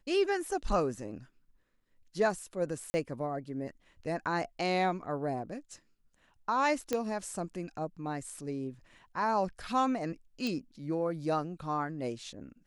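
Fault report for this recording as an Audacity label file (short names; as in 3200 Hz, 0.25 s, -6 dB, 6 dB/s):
2.900000	2.940000	gap 40 ms
6.930000	6.930000	pop -16 dBFS
10.470000	10.470000	pop -22 dBFS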